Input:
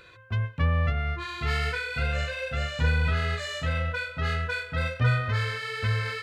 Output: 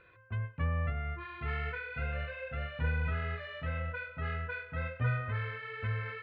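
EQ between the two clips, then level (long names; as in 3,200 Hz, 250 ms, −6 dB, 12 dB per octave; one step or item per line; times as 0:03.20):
low-pass filter 2,600 Hz 24 dB per octave
−8.0 dB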